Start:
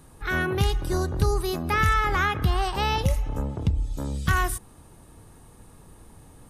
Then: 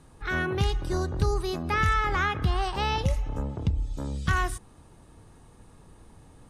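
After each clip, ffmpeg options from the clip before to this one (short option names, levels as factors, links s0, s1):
-af "lowpass=7700,volume=0.75"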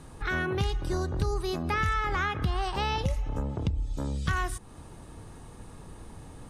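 -af "acompressor=threshold=0.0112:ratio=2,volume=2.11"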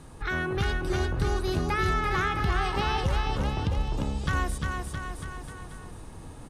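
-af "aecho=1:1:350|665|948.5|1204|1433:0.631|0.398|0.251|0.158|0.1"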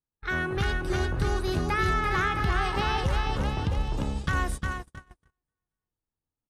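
-af "agate=range=0.00355:threshold=0.0316:ratio=16:detection=peak,equalizer=f=1700:t=o:w=0.77:g=2"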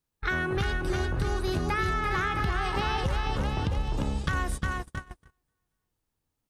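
-af "acompressor=threshold=0.0178:ratio=4,volume=2.66"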